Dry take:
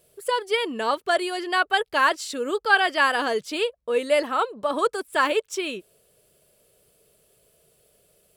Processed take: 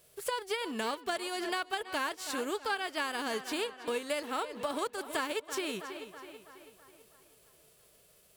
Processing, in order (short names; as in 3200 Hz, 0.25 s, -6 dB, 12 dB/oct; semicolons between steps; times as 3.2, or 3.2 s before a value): spectral whitening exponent 0.6; tape echo 0.326 s, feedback 54%, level -15.5 dB, low-pass 5200 Hz; compressor 6:1, threshold -30 dBFS, peak gain reduction 16.5 dB; gain -1.5 dB